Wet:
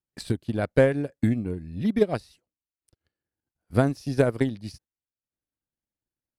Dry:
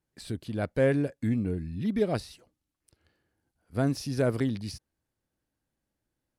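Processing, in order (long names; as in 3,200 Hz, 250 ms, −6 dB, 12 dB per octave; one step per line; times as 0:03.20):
transient designer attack +10 dB, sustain −8 dB
noise gate −52 dBFS, range −13 dB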